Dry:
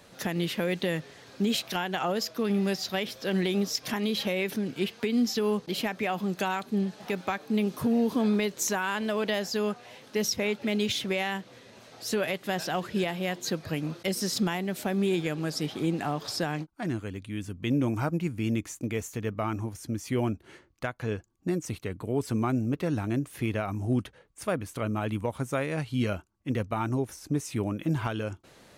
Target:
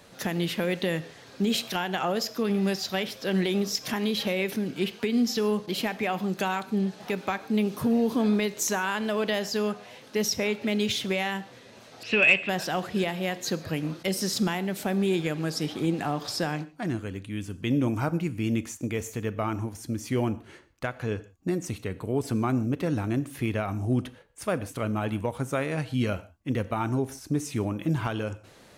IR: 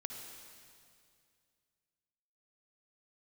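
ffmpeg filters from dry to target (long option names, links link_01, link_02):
-filter_complex "[0:a]asettb=1/sr,asplit=3[link_01][link_02][link_03];[link_01]atrim=end=12.034[link_04];[link_02]atrim=start=12.03:end=12.49,asetpts=PTS-STARTPTS,afade=type=in:duration=0.004:curve=qsin,afade=type=out:start_time=0.456:duration=0.004:curve=qsin,lowpass=frequency=2600:width_type=q:width=12[link_05];[link_03]atrim=start=12.486[link_06];[link_04][link_05]acrossfade=duration=0.004:curve1=hsin:curve2=qsin[link_07];[link_07][link_06]acrossfade=duration=0.004:curve1=qsin:curve2=hsin,acontrast=41,asplit=2[link_08][link_09];[1:a]atrim=start_sample=2205,afade=type=out:start_time=0.37:duration=0.01,atrim=end_sample=16758,asetrate=88200,aresample=44100[link_10];[link_09][link_10]afir=irnorm=-1:irlink=0,volume=-1dB[link_11];[link_08][link_11]amix=inputs=2:normalize=0,volume=-6.5dB"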